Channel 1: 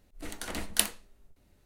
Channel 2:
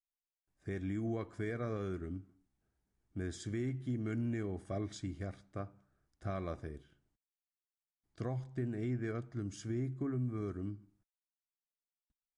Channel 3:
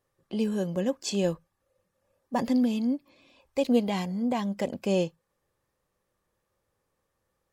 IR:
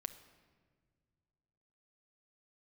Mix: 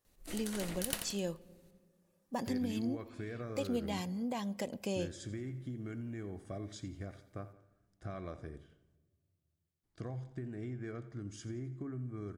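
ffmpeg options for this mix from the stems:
-filter_complex "[0:a]aeval=exprs='(tanh(5.62*val(0)+0.75)-tanh(0.75))/5.62':channel_layout=same,adelay=50,volume=-2.5dB,asplit=2[link_01][link_02];[link_02]volume=-3.5dB[link_03];[1:a]acompressor=threshold=-38dB:ratio=6,adelay=1800,volume=-3.5dB,asplit=3[link_04][link_05][link_06];[link_05]volume=-5dB[link_07];[link_06]volume=-12dB[link_08];[2:a]volume=-9dB,asplit=2[link_09][link_10];[link_10]volume=-7dB[link_11];[link_01][link_09]amix=inputs=2:normalize=0,highshelf=frequency=3600:gain=10.5,acompressor=threshold=-36dB:ratio=10,volume=0dB[link_12];[3:a]atrim=start_sample=2205[link_13];[link_07][link_11]amix=inputs=2:normalize=0[link_14];[link_14][link_13]afir=irnorm=-1:irlink=0[link_15];[link_03][link_08]amix=inputs=2:normalize=0,aecho=0:1:86|172|258|344|430|516:1|0.42|0.176|0.0741|0.0311|0.0131[link_16];[link_04][link_12][link_15][link_16]amix=inputs=4:normalize=0"

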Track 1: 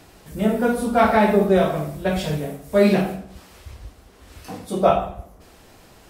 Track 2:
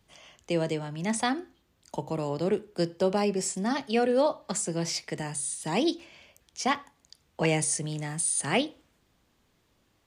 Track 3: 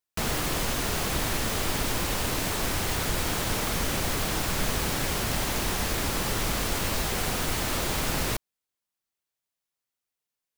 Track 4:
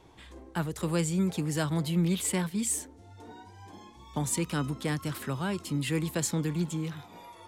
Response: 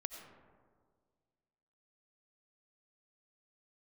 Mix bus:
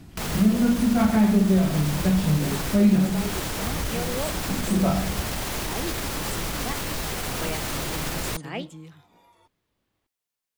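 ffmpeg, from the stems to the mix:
-filter_complex "[0:a]lowshelf=frequency=330:width_type=q:width=1.5:gain=11.5,volume=-5.5dB[link_01];[1:a]lowpass=4500,volume=-7.5dB[link_02];[2:a]alimiter=limit=-20.5dB:level=0:latency=1,volume=1dB[link_03];[3:a]adelay=2000,volume=-10dB[link_04];[link_01][link_02][link_03][link_04]amix=inputs=4:normalize=0,acompressor=threshold=-20dB:ratio=2"

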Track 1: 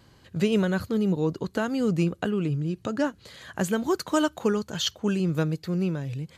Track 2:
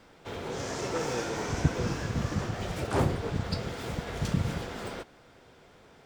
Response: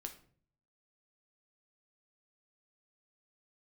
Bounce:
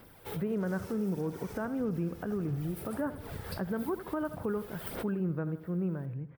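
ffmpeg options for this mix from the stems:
-filter_complex "[0:a]lowpass=frequency=1700:width=0.5412,lowpass=frequency=1700:width=1.3066,volume=-6.5dB,asplit=3[link_01][link_02][link_03];[link_02]volume=-15.5dB[link_04];[1:a]acompressor=threshold=-31dB:ratio=6,aphaser=in_gain=1:out_gain=1:delay=2.4:decay=0.51:speed=1.6:type=sinusoidal,volume=-4.5dB,asplit=2[link_05][link_06];[link_06]volume=-22.5dB[link_07];[link_03]apad=whole_len=266979[link_08];[link_05][link_08]sidechaincompress=threshold=-44dB:ratio=8:attack=31:release=269[link_09];[link_04][link_07]amix=inputs=2:normalize=0,aecho=0:1:80|160|240|320|400|480|560:1|0.49|0.24|0.118|0.0576|0.0282|0.0138[link_10];[link_01][link_09][link_10]amix=inputs=3:normalize=0,aexciter=amount=14:drive=4.9:freq=9700,alimiter=level_in=0.5dB:limit=-24dB:level=0:latency=1:release=60,volume=-0.5dB"

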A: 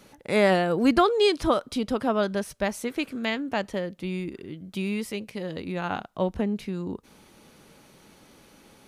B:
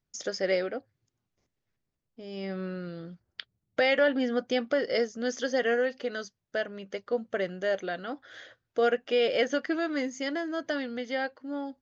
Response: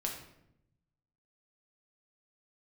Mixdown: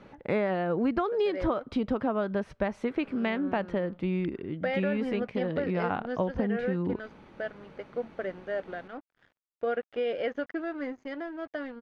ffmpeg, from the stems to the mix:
-filter_complex "[0:a]volume=3dB[link_01];[1:a]aeval=exprs='sgn(val(0))*max(abs(val(0))-0.00631,0)':channel_layout=same,adelay=850,volume=-3dB[link_02];[link_01][link_02]amix=inputs=2:normalize=0,lowpass=2000,acompressor=threshold=-24dB:ratio=8"

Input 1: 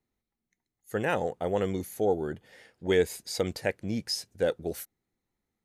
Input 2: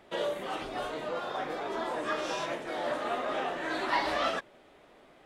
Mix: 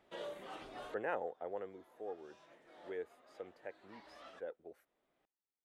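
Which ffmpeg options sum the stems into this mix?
ffmpeg -i stem1.wav -i stem2.wav -filter_complex "[0:a]acrossover=split=320 2100:gain=0.112 1 0.0891[link_01][link_02][link_03];[link_01][link_02][link_03]amix=inputs=3:normalize=0,volume=-7.5dB,afade=type=out:start_time=1.03:duration=0.77:silence=0.334965,asplit=2[link_04][link_05];[1:a]volume=-13dB[link_06];[link_05]apad=whole_len=231600[link_07];[link_06][link_07]sidechaincompress=threshold=-59dB:ratio=10:attack=5.2:release=1020[link_08];[link_04][link_08]amix=inputs=2:normalize=0" out.wav

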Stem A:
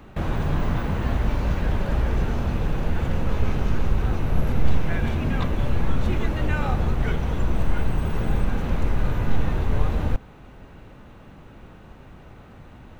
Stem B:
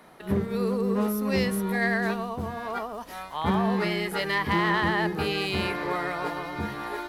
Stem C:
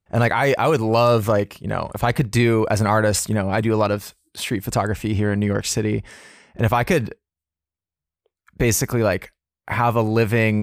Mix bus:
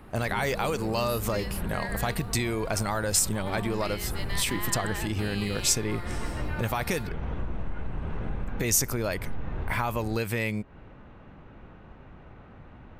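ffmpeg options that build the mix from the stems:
ffmpeg -i stem1.wav -i stem2.wav -i stem3.wav -filter_complex "[0:a]lowpass=1900,acompressor=threshold=-24dB:ratio=4,volume=-3.5dB[link_01];[1:a]bandreject=frequency=6000:width=5.9,volume=-13.5dB[link_02];[2:a]acompressor=threshold=-18dB:ratio=6,volume=-7.5dB,asplit=2[link_03][link_04];[link_04]apad=whole_len=573159[link_05];[link_01][link_05]sidechaincompress=threshold=-34dB:ratio=8:attack=12:release=269[link_06];[link_06][link_02][link_03]amix=inputs=3:normalize=0,highshelf=frequency=3000:gain=11" out.wav

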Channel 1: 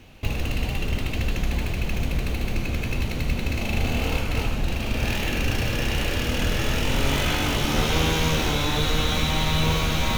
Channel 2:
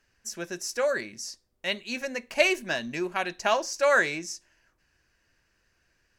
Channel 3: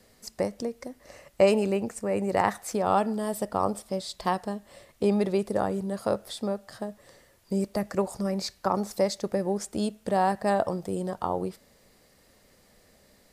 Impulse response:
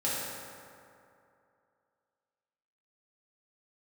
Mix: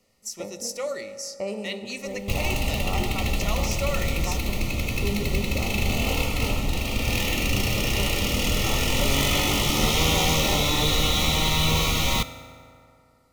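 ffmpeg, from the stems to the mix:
-filter_complex "[0:a]adelay=2050,volume=-2dB,asplit=2[link_01][link_02];[link_02]volume=-18.5dB[link_03];[1:a]volume=-5dB,asplit=2[link_04][link_05];[link_05]volume=-20dB[link_06];[2:a]highshelf=frequency=3700:gain=-9.5,volume=-11dB,asplit=2[link_07][link_08];[link_08]volume=-12.5dB[link_09];[link_04][link_07]amix=inputs=2:normalize=0,alimiter=limit=-24dB:level=0:latency=1:release=224,volume=0dB[link_10];[3:a]atrim=start_sample=2205[link_11];[link_03][link_06][link_09]amix=inputs=3:normalize=0[link_12];[link_12][link_11]afir=irnorm=-1:irlink=0[link_13];[link_01][link_10][link_13]amix=inputs=3:normalize=0,asuperstop=centerf=1600:order=12:qfactor=4.5,highshelf=frequency=3500:gain=8.5"

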